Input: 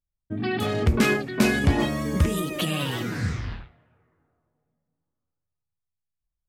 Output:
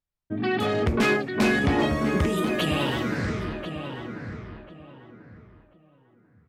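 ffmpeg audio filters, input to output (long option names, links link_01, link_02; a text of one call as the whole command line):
ffmpeg -i in.wav -filter_complex "[0:a]lowpass=frequency=3100:poles=1,lowshelf=frequency=140:gain=-10.5,aeval=exprs='0.251*sin(PI/2*1.58*val(0)/0.251)':channel_layout=same,asplit=2[link_01][link_02];[link_02]adelay=1041,lowpass=frequency=1800:poles=1,volume=-7dB,asplit=2[link_03][link_04];[link_04]adelay=1041,lowpass=frequency=1800:poles=1,volume=0.27,asplit=2[link_05][link_06];[link_06]adelay=1041,lowpass=frequency=1800:poles=1,volume=0.27[link_07];[link_03][link_05][link_07]amix=inputs=3:normalize=0[link_08];[link_01][link_08]amix=inputs=2:normalize=0,volume=-4dB" out.wav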